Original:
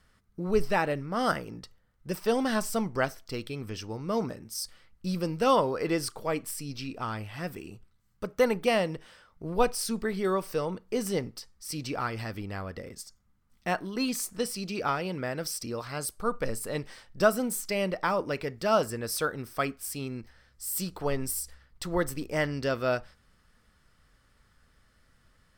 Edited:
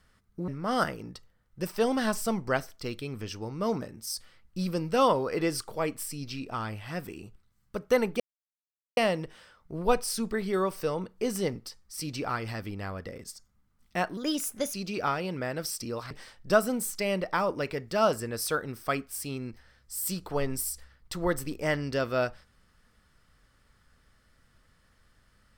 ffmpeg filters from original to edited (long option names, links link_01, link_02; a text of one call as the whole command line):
ffmpeg -i in.wav -filter_complex "[0:a]asplit=6[link_01][link_02][link_03][link_04][link_05][link_06];[link_01]atrim=end=0.482[link_07];[link_02]atrim=start=0.958:end=8.68,asetpts=PTS-STARTPTS,afade=type=out:start_time=7.718:duration=0.004:curve=hsin,apad=pad_dur=0.77[link_08];[link_03]atrim=start=8.68:end=13.884,asetpts=PTS-STARTPTS,afade=type=in:duration=0.004:curve=hsin[link_09];[link_04]atrim=start=13.88:end=14.55,asetpts=PTS-STARTPTS,asetrate=52038,aresample=44100[link_10];[link_05]atrim=start=14.546:end=15.922[link_11];[link_06]atrim=start=16.808[link_12];[link_08][link_09]concat=n=2:v=0:a=1[link_13];[link_07][link_13]acrossfade=duration=0.004:curve1=hsin:curve2=hsin[link_14];[link_14][link_10]acrossfade=duration=0.004:curve1=hsin:curve2=hsin[link_15];[link_15][link_11]acrossfade=duration=0.004:curve1=hsin:curve2=hsin[link_16];[link_16][link_12]acrossfade=duration=0.004:curve1=hsin:curve2=hsin" out.wav